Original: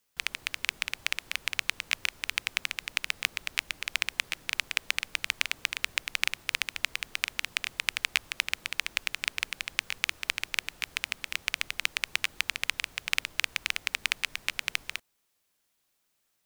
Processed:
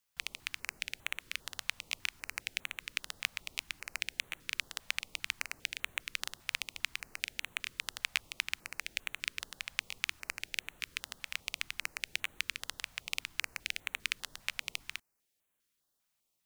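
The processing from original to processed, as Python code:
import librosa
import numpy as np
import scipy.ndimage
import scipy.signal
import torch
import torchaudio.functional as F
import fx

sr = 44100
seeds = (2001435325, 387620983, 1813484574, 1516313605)

y = fx.filter_held_notch(x, sr, hz=5.0, low_hz=360.0, high_hz=5000.0)
y = y * 10.0 ** (-5.5 / 20.0)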